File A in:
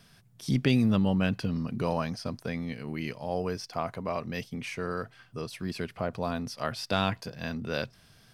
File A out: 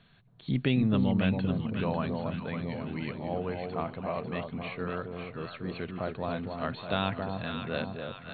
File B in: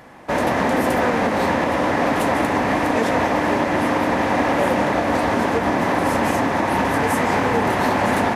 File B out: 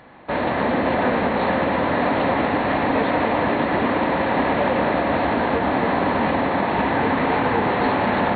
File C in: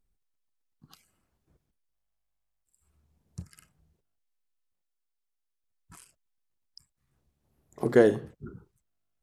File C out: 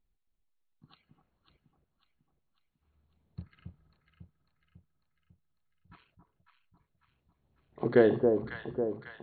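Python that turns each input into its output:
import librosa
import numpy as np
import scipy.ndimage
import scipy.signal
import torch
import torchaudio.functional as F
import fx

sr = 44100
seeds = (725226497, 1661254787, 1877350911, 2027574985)

y = fx.brickwall_lowpass(x, sr, high_hz=4400.0)
y = fx.echo_alternate(y, sr, ms=274, hz=990.0, feedback_pct=72, wet_db=-4)
y = y * librosa.db_to_amplitude(-2.5)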